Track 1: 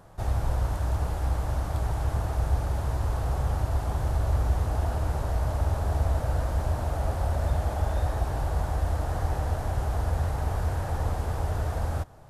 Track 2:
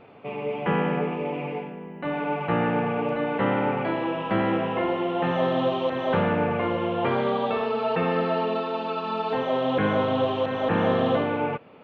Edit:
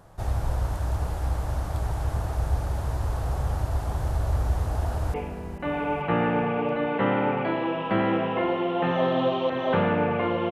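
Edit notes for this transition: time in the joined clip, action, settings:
track 1
0:04.71–0:05.14: delay throw 440 ms, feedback 45%, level −11 dB
0:05.14: continue with track 2 from 0:01.54

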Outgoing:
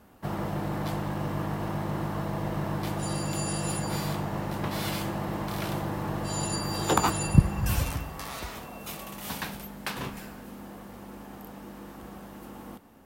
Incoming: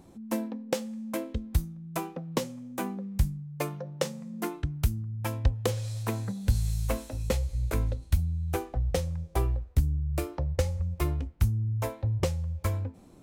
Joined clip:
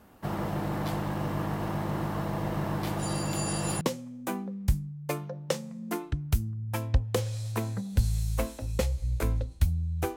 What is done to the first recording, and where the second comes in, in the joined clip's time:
outgoing
0:03.81: continue with incoming from 0:02.32

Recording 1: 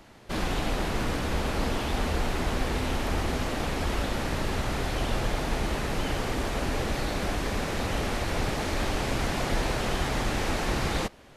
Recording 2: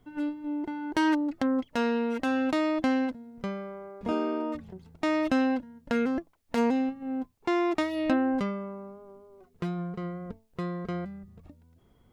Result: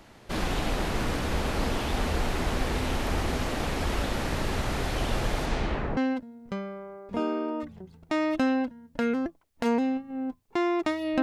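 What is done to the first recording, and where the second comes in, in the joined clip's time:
recording 1
0:05.45–0:05.97: low-pass filter 10,000 Hz → 1,000 Hz
0:05.97: continue with recording 2 from 0:02.89

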